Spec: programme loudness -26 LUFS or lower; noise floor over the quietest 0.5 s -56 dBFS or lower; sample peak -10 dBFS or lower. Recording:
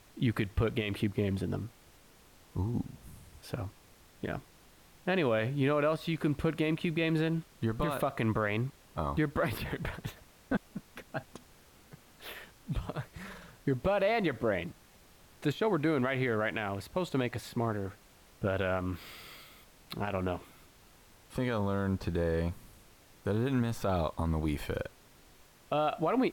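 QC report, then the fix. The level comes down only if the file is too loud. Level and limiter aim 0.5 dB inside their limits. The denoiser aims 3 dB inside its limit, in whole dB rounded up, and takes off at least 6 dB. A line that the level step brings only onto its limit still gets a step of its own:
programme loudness -33.0 LUFS: OK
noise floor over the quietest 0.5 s -59 dBFS: OK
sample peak -20.0 dBFS: OK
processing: none

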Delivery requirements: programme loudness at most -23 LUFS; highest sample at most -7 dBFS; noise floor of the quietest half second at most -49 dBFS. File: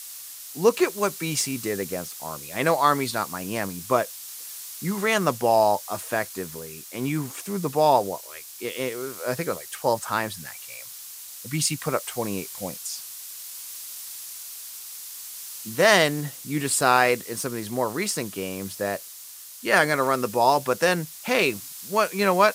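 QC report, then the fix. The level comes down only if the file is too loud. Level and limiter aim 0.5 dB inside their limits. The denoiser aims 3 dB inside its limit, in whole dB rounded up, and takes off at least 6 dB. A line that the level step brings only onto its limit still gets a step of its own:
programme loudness -25.0 LUFS: OK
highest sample -4.0 dBFS: fail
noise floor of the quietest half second -42 dBFS: fail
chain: denoiser 10 dB, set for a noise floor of -42 dBFS; limiter -7.5 dBFS

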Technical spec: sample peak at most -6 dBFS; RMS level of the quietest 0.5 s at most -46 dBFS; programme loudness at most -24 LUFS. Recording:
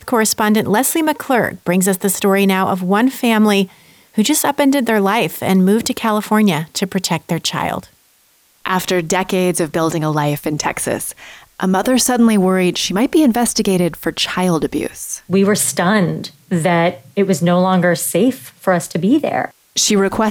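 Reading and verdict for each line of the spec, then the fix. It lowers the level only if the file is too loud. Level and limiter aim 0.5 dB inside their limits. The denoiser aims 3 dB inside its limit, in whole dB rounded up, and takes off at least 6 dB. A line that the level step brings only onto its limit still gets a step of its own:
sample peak -4.5 dBFS: fail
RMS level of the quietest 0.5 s -55 dBFS: OK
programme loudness -15.5 LUFS: fail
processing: gain -9 dB

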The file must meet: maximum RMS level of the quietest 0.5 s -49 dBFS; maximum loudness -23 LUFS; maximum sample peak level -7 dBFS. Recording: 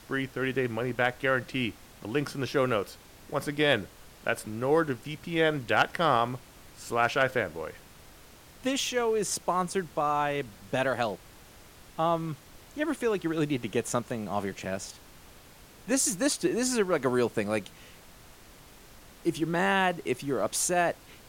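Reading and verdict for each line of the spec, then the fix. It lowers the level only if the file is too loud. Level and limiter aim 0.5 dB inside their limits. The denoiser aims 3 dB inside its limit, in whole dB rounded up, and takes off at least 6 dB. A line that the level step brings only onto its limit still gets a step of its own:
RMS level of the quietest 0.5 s -52 dBFS: OK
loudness -29.0 LUFS: OK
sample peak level -10.5 dBFS: OK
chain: none

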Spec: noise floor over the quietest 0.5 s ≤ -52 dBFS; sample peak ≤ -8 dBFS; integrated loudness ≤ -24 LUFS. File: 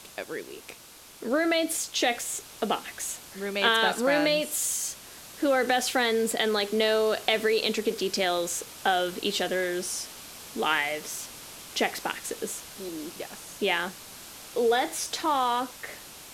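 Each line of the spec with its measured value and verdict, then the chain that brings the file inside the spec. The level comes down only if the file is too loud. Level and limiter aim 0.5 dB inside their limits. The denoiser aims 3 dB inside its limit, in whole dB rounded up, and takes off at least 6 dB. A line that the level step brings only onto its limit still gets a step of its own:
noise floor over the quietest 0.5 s -49 dBFS: fail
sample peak -6.0 dBFS: fail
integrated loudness -27.0 LUFS: OK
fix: denoiser 6 dB, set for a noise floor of -49 dBFS; limiter -8.5 dBFS

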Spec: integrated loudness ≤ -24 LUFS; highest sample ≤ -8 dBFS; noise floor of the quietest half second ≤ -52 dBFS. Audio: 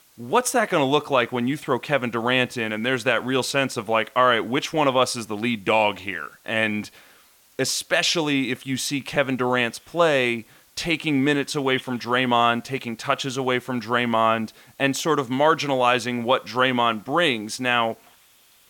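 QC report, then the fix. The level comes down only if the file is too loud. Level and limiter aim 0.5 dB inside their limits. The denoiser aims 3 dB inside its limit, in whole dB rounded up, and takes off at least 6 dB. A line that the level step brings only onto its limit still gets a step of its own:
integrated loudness -22.5 LUFS: fail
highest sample -6.0 dBFS: fail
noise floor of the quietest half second -56 dBFS: OK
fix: gain -2 dB; limiter -8.5 dBFS

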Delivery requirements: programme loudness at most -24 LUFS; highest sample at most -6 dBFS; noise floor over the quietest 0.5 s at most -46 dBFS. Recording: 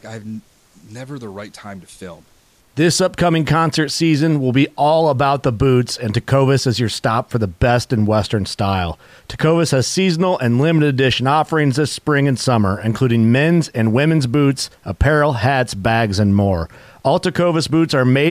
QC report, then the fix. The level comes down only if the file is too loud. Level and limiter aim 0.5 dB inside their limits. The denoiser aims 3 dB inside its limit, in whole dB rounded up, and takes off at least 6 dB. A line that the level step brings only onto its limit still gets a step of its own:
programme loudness -16.0 LUFS: fail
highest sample -5.0 dBFS: fail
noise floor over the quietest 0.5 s -53 dBFS: OK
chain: gain -8.5 dB

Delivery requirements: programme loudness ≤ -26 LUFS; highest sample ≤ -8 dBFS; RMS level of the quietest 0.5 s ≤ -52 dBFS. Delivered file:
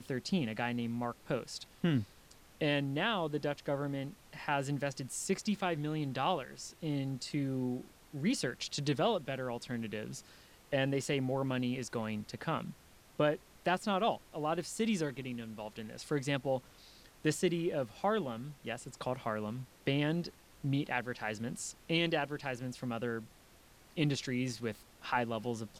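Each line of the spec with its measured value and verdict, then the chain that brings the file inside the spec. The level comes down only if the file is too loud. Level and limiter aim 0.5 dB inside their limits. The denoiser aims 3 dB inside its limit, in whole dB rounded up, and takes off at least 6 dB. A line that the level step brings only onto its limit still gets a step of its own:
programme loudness -36.0 LUFS: OK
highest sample -18.0 dBFS: OK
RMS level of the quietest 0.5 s -61 dBFS: OK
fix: none

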